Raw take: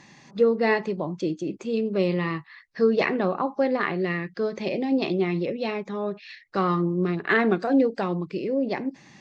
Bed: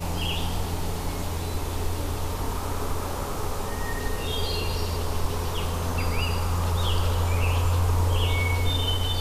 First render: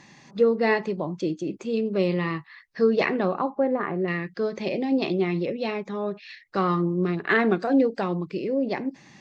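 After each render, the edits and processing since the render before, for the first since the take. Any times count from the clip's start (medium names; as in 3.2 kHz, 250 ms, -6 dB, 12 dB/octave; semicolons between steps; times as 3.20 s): 3.50–4.08 s: low-pass 1.3 kHz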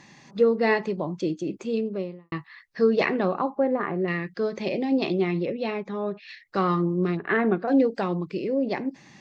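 1.65–2.32 s: studio fade out; 5.31–6.28 s: distance through air 100 m; 7.17–7.68 s: distance through air 450 m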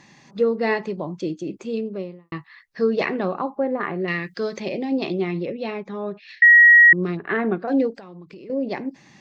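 3.80–4.60 s: treble shelf 2.1 kHz +10 dB; 6.42–6.93 s: bleep 1.9 kHz -7 dBFS; 7.91–8.50 s: compression, threshold -38 dBFS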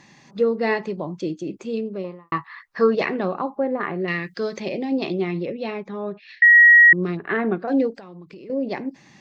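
2.04–2.95 s: peaking EQ 1.1 kHz +14.5 dB 1.3 oct; 5.88–6.55 s: distance through air 75 m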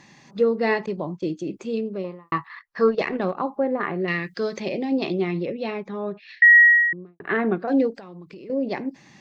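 0.86–1.30 s: expander -34 dBFS; 2.48–3.37 s: transient shaper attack -2 dB, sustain -11 dB; 6.51–7.20 s: studio fade out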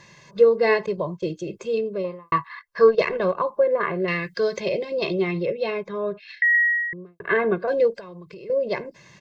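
comb 1.9 ms, depth 91%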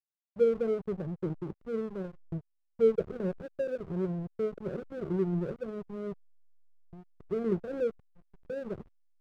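Gaussian low-pass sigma 22 samples; hysteresis with a dead band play -32.5 dBFS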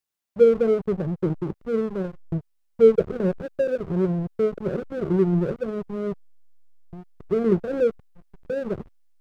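trim +9.5 dB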